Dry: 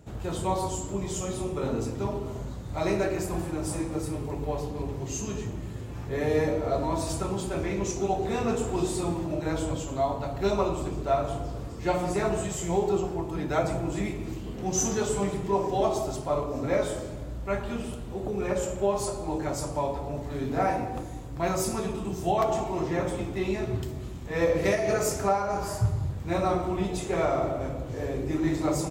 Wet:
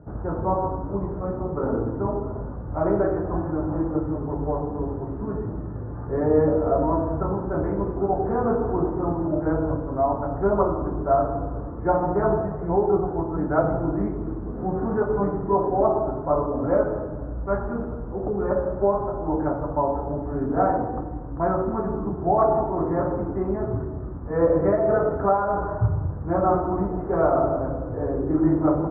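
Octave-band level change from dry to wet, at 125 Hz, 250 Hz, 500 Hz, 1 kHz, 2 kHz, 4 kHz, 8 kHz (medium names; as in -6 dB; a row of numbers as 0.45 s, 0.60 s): +3.5 dB, +5.5 dB, +5.5 dB, +5.5 dB, -2.5 dB, under -40 dB, under -40 dB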